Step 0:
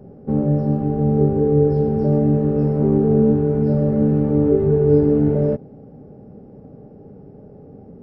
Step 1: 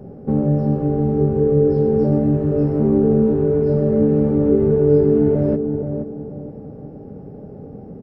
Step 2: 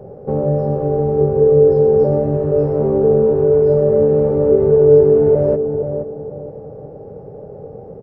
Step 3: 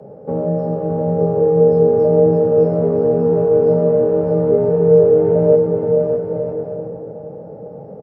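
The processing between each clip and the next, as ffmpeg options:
ffmpeg -i in.wav -filter_complex "[0:a]asplit=2[link_01][link_02];[link_02]acompressor=threshold=-24dB:ratio=6,volume=2dB[link_03];[link_01][link_03]amix=inputs=2:normalize=0,asplit=2[link_04][link_05];[link_05]adelay=474,lowpass=frequency=970:poles=1,volume=-6dB,asplit=2[link_06][link_07];[link_07]adelay=474,lowpass=frequency=970:poles=1,volume=0.37,asplit=2[link_08][link_09];[link_09]adelay=474,lowpass=frequency=970:poles=1,volume=0.37,asplit=2[link_10][link_11];[link_11]adelay=474,lowpass=frequency=970:poles=1,volume=0.37[link_12];[link_04][link_06][link_08][link_10][link_12]amix=inputs=5:normalize=0,volume=-2.5dB" out.wav
ffmpeg -i in.wav -af "equalizer=frequency=125:width_type=o:width=1:gain=4,equalizer=frequency=250:width_type=o:width=1:gain=-10,equalizer=frequency=500:width_type=o:width=1:gain=12,equalizer=frequency=1000:width_type=o:width=1:gain=5,volume=-2dB" out.wav
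ffmpeg -i in.wav -filter_complex "[0:a]highpass=74,afreqshift=22,asplit=2[link_01][link_02];[link_02]aecho=0:1:610|976|1196|1327|1406:0.631|0.398|0.251|0.158|0.1[link_03];[link_01][link_03]amix=inputs=2:normalize=0,volume=-2dB" out.wav

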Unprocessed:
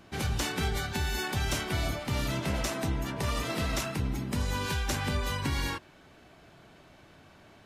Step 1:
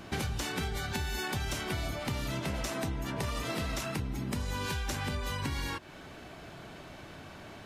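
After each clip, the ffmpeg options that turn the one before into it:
ffmpeg -i in.wav -af "acompressor=threshold=-39dB:ratio=10,volume=8dB" out.wav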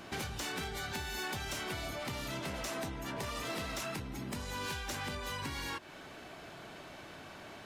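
ffmpeg -i in.wav -af "lowshelf=frequency=190:gain=-9.5,asoftclip=type=tanh:threshold=-32dB" out.wav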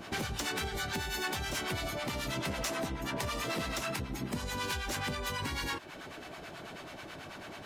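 ffmpeg -i in.wav -filter_complex "[0:a]acrossover=split=740[link_01][link_02];[link_01]aeval=exprs='val(0)*(1-0.7/2+0.7/2*cos(2*PI*9.2*n/s))':channel_layout=same[link_03];[link_02]aeval=exprs='val(0)*(1-0.7/2-0.7/2*cos(2*PI*9.2*n/s))':channel_layout=same[link_04];[link_03][link_04]amix=inputs=2:normalize=0,volume=7dB" out.wav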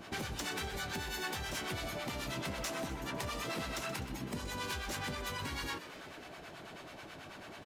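ffmpeg -i in.wav -filter_complex "[0:a]asplit=7[link_01][link_02][link_03][link_04][link_05][link_06][link_07];[link_02]adelay=126,afreqshift=120,volume=-13dB[link_08];[link_03]adelay=252,afreqshift=240,volume=-17.7dB[link_09];[link_04]adelay=378,afreqshift=360,volume=-22.5dB[link_10];[link_05]adelay=504,afreqshift=480,volume=-27.2dB[link_11];[link_06]adelay=630,afreqshift=600,volume=-31.9dB[link_12];[link_07]adelay=756,afreqshift=720,volume=-36.7dB[link_13];[link_01][link_08][link_09][link_10][link_11][link_12][link_13]amix=inputs=7:normalize=0,volume=-4dB" out.wav

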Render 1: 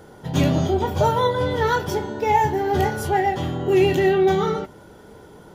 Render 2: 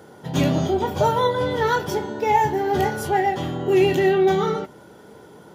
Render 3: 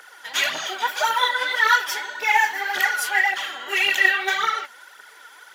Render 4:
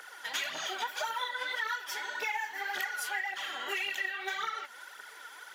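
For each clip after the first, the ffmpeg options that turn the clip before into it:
ffmpeg -i in.wav -af "highpass=120" out.wav
ffmpeg -i in.wav -af "aphaser=in_gain=1:out_gain=1:delay=4.5:decay=0.59:speed=1.8:type=triangular,highpass=frequency=1700:width_type=q:width=1.9,volume=5dB" out.wav
ffmpeg -i in.wav -af "acompressor=threshold=-30dB:ratio=6,volume=-2.5dB" out.wav

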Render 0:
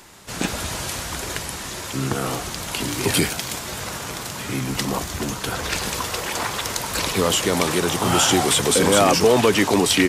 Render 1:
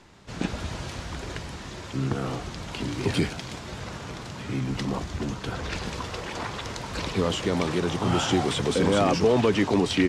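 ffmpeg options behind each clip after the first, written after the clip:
ffmpeg -i in.wav -af "lowpass=5100,lowshelf=frequency=390:gain=8,volume=-8.5dB" out.wav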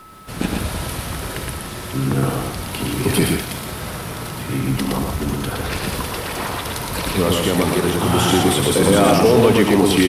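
ffmpeg -i in.wav -af "aexciter=amount=8.4:drive=8.5:freq=9800,aeval=exprs='val(0)+0.00447*sin(2*PI*1300*n/s)':channel_layout=same,aecho=1:1:72.89|116.6|169.1:0.282|0.708|0.251,volume=6dB" out.wav

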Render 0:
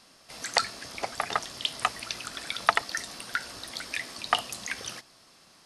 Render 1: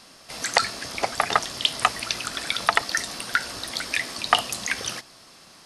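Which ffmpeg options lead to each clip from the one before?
ffmpeg -i in.wav -af "alimiter=level_in=8.5dB:limit=-1dB:release=50:level=0:latency=1,volume=-1dB" out.wav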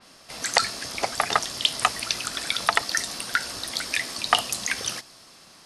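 ffmpeg -i in.wav -af "adynamicequalizer=threshold=0.0178:dfrequency=3700:dqfactor=0.7:tfrequency=3700:tqfactor=0.7:attack=5:release=100:ratio=0.375:range=2:mode=boostabove:tftype=highshelf,volume=-1.5dB" out.wav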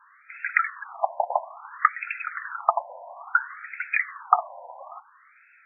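ffmpeg -i in.wav -af "afftfilt=real='re*between(b*sr/1024,720*pow(1900/720,0.5+0.5*sin(2*PI*0.59*pts/sr))/1.41,720*pow(1900/720,0.5+0.5*sin(2*PI*0.59*pts/sr))*1.41)':imag='im*between(b*sr/1024,720*pow(1900/720,0.5+0.5*sin(2*PI*0.59*pts/sr))/1.41,720*pow(1900/720,0.5+0.5*sin(2*PI*0.59*pts/sr))*1.41)':win_size=1024:overlap=0.75,volume=4.5dB" out.wav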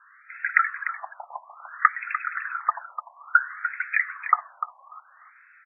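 ffmpeg -i in.wav -af "asuperpass=centerf=1600:order=4:qfactor=1.9,aecho=1:1:297:0.299,volume=3.5dB" out.wav

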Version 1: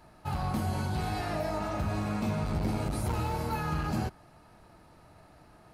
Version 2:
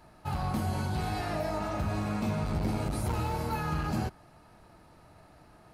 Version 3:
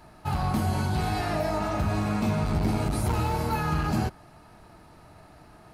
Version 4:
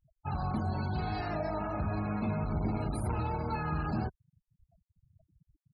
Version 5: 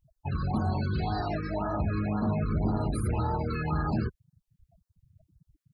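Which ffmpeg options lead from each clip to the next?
ffmpeg -i in.wav -af anull out.wav
ffmpeg -i in.wav -af "bandreject=frequency=530:width=12,volume=5dB" out.wav
ffmpeg -i in.wav -af "afftfilt=real='re*gte(hypot(re,im),0.02)':imag='im*gte(hypot(re,im),0.02)':win_size=1024:overlap=0.75,volume=-6.5dB" out.wav
ffmpeg -i in.wav -af "afftfilt=real='re*(1-between(b*sr/1024,720*pow(2700/720,0.5+0.5*sin(2*PI*1.9*pts/sr))/1.41,720*pow(2700/720,0.5+0.5*sin(2*PI*1.9*pts/sr))*1.41))':imag='im*(1-between(b*sr/1024,720*pow(2700/720,0.5+0.5*sin(2*PI*1.9*pts/sr))/1.41,720*pow(2700/720,0.5+0.5*sin(2*PI*1.9*pts/sr))*1.41))':win_size=1024:overlap=0.75,volume=4.5dB" out.wav

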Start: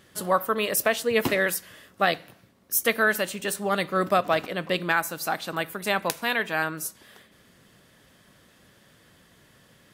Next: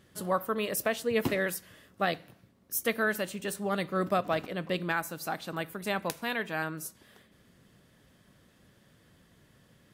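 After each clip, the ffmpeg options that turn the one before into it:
ffmpeg -i in.wav -af "lowshelf=frequency=380:gain=7.5,volume=-8dB" out.wav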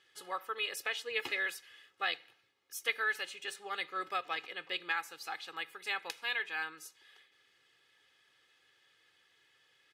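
ffmpeg -i in.wav -af "bandpass=frequency=2800:width_type=q:width=1.1:csg=0,aecho=1:1:2.4:0.78" out.wav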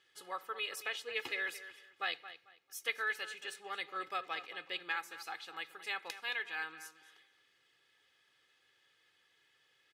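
ffmpeg -i in.wav -filter_complex "[0:a]asplit=2[link_01][link_02];[link_02]adelay=222,lowpass=frequency=4400:poles=1,volume=-13dB,asplit=2[link_03][link_04];[link_04]adelay=222,lowpass=frequency=4400:poles=1,volume=0.26,asplit=2[link_05][link_06];[link_06]adelay=222,lowpass=frequency=4400:poles=1,volume=0.26[link_07];[link_01][link_03][link_05][link_07]amix=inputs=4:normalize=0,volume=-3dB" out.wav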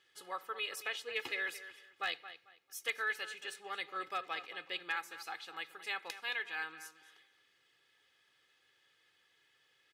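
ffmpeg -i in.wav -af "asoftclip=type=hard:threshold=-25.5dB" out.wav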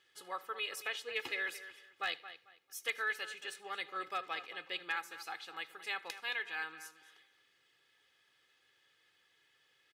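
ffmpeg -i in.wav -af "aecho=1:1:78:0.0668" out.wav

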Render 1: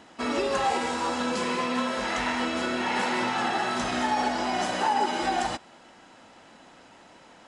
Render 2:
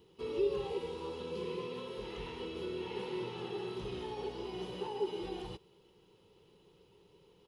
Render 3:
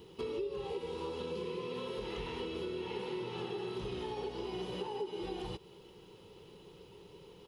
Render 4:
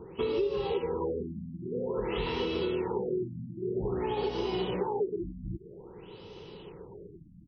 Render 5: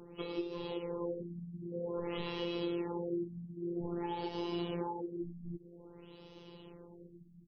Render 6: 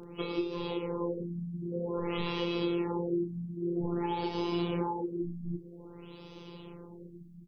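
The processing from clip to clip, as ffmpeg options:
ffmpeg -i in.wav -filter_complex "[0:a]acrossover=split=4200[link_01][link_02];[link_02]acompressor=threshold=-46dB:ratio=4:attack=1:release=60[link_03];[link_01][link_03]amix=inputs=2:normalize=0,firequalizer=gain_entry='entry(170,0);entry(250,-20);entry(410,7);entry(640,-25);entry(940,-14);entry(1600,-26);entry(2900,-8);entry(7900,-21);entry(13000,10)':delay=0.05:min_phase=1,volume=-3.5dB" out.wav
ffmpeg -i in.wav -af "acompressor=threshold=-46dB:ratio=5,volume=9dB" out.wav
ffmpeg -i in.wav -af "afftfilt=real='re*lt(b*sr/1024,290*pow(6500/290,0.5+0.5*sin(2*PI*0.51*pts/sr)))':imag='im*lt(b*sr/1024,290*pow(6500/290,0.5+0.5*sin(2*PI*0.51*pts/sr)))':win_size=1024:overlap=0.75,volume=8.5dB" out.wav
ffmpeg -i in.wav -af "afftfilt=real='hypot(re,im)*cos(PI*b)':imag='0':win_size=1024:overlap=0.75,volume=-3dB" out.wav
ffmpeg -i in.wav -filter_complex "[0:a]asplit=2[link_01][link_02];[link_02]adelay=34,volume=-9dB[link_03];[link_01][link_03]amix=inputs=2:normalize=0,volume=5.5dB" out.wav

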